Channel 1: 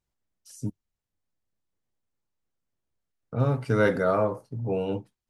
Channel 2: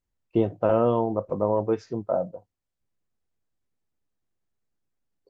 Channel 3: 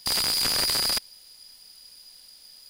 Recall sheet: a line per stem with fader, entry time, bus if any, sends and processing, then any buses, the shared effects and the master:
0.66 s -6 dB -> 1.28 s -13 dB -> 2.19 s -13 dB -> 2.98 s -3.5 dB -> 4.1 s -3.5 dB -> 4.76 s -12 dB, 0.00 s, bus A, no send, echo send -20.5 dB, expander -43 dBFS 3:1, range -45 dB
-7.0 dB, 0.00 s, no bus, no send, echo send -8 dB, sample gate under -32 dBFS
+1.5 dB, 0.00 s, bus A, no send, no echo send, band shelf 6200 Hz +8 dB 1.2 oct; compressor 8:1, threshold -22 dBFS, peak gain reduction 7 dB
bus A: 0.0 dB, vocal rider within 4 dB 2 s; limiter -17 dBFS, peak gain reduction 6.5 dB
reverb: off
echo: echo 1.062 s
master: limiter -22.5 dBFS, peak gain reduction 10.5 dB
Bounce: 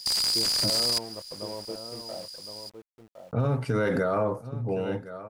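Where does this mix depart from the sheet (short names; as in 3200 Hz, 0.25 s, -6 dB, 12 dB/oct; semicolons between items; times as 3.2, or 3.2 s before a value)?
stem 1 -6.0 dB -> +2.0 dB; stem 2 -7.0 dB -> -14.5 dB; master: missing limiter -22.5 dBFS, peak gain reduction 10.5 dB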